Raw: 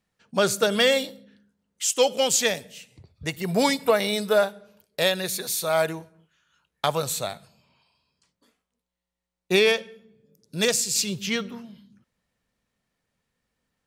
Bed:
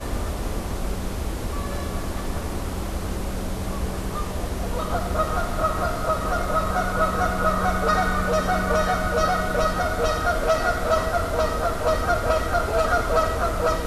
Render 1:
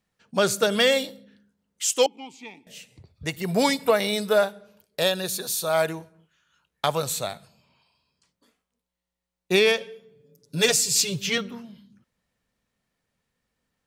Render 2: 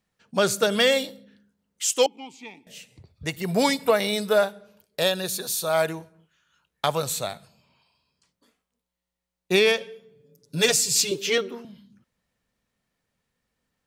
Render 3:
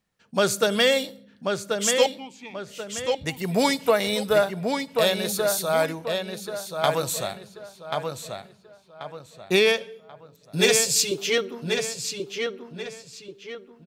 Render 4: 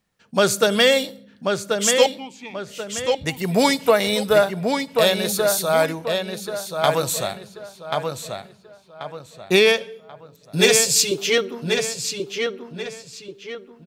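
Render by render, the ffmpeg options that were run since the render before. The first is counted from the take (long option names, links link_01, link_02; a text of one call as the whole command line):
ffmpeg -i in.wav -filter_complex "[0:a]asettb=1/sr,asplit=3[link_01][link_02][link_03];[link_01]atrim=end=2.064[link_04];[link_02]atrim=start=2.06:end=2.67,asetpts=PTS-STARTPTS,afade=type=in:duration=0.004:curve=qsin,afade=type=out:start_time=0.606:duration=0.004:curve=qsin,asplit=3[link_05][link_06][link_07];[link_05]bandpass=frequency=300:width_type=q:width=8,volume=0dB[link_08];[link_06]bandpass=frequency=870:width_type=q:width=8,volume=-6dB[link_09];[link_07]bandpass=frequency=2240:width_type=q:width=8,volume=-9dB[link_10];[link_08][link_09][link_10]amix=inputs=3:normalize=0[link_11];[link_03]atrim=start=2.666[link_12];[link_04][link_11]acrossfade=duration=0.004:curve1=hsin:curve2=qsin[link_13];[link_13][link_12]acrossfade=duration=0.004:curve1=qsin:curve2=hsin,asettb=1/sr,asplit=3[link_14][link_15][link_16];[link_14]atrim=end=5.004[link_17];[link_15]atrim=start=5:end=5.74,asetpts=PTS-STARTPTS,afade=type=in:duration=0.004:curve=qsin,afade=type=out:start_time=0.736:duration=0.004:curve=qsin,equalizer=frequency=2100:width=6.5:gain=-14[link_18];[link_16]atrim=start=5.736[link_19];[link_17][link_18]acrossfade=duration=0.004:curve1=hsin:curve2=qsin[link_20];[link_20][link_19]acrossfade=duration=0.004:curve1=qsin:curve2=hsin,asettb=1/sr,asplit=3[link_21][link_22][link_23];[link_21]atrim=end=9.804[link_24];[link_22]atrim=start=9.8:end=11.38,asetpts=PTS-STARTPTS,afade=type=in:duration=0.004:curve=qsin,afade=type=out:start_time=1.576:duration=0.004:curve=qsin,aecho=1:1:7:0.93,atrim=end_sample=69678[link_25];[link_23]atrim=start=11.376[link_26];[link_24][link_25]acrossfade=duration=0.004:curve1=hsin:curve2=qsin[link_27];[link_27][link_26]acrossfade=duration=0.004:curve1=qsin:curve2=hsin" out.wav
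ffmpeg -i in.wav -filter_complex "[0:a]asettb=1/sr,asplit=3[link_01][link_02][link_03];[link_01]atrim=end=11.114[link_04];[link_02]atrim=start=11.11:end=11.65,asetpts=PTS-STARTPTS,afade=type=in:duration=0.004:curve=qsin,afade=type=out:start_time=0.536:duration=0.004:curve=qsin,highpass=frequency=360:width_type=q:width=4.4[link_05];[link_03]atrim=start=11.646[link_06];[link_04][link_05]acrossfade=duration=0.004:curve1=hsin:curve2=qsin[link_07];[link_07][link_06]acrossfade=duration=0.004:curve1=qsin:curve2=hsin" out.wav
ffmpeg -i in.wav -filter_complex "[0:a]asplit=2[link_01][link_02];[link_02]adelay=1085,lowpass=frequency=4000:poles=1,volume=-4.5dB,asplit=2[link_03][link_04];[link_04]adelay=1085,lowpass=frequency=4000:poles=1,volume=0.36,asplit=2[link_05][link_06];[link_06]adelay=1085,lowpass=frequency=4000:poles=1,volume=0.36,asplit=2[link_07][link_08];[link_08]adelay=1085,lowpass=frequency=4000:poles=1,volume=0.36,asplit=2[link_09][link_10];[link_10]adelay=1085,lowpass=frequency=4000:poles=1,volume=0.36[link_11];[link_01][link_03][link_05][link_07][link_09][link_11]amix=inputs=6:normalize=0" out.wav
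ffmpeg -i in.wav -af "volume=4dB,alimiter=limit=-2dB:level=0:latency=1" out.wav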